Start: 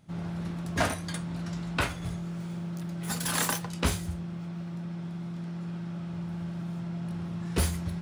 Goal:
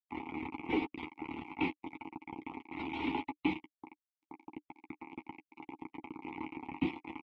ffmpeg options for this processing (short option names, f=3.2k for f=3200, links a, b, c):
-filter_complex "[0:a]highpass=f=210:t=q:w=0.5412,highpass=f=210:t=q:w=1.307,lowpass=f=3.2k:t=q:w=0.5176,lowpass=f=3.2k:t=q:w=0.7071,lowpass=f=3.2k:t=q:w=1.932,afreqshift=-240,acrossover=split=310|570|2000[a][b][c][d];[c]acompressor=threshold=-50dB:ratio=12[e];[a][b][e][d]amix=inputs=4:normalize=0,asetrate=48951,aresample=44100,acrusher=bits=5:mix=0:aa=0.000001,asplit=3[f][g][h];[f]bandpass=f=300:t=q:w=8,volume=0dB[i];[g]bandpass=f=870:t=q:w=8,volume=-6dB[j];[h]bandpass=f=2.24k:t=q:w=8,volume=-9dB[k];[i][j][k]amix=inputs=3:normalize=0,asplit=2[l][m];[m]adelay=12,volume=-7.5dB[n];[l][n]amix=inputs=2:normalize=0,afftdn=nr=18:nf=-68,volume=13.5dB"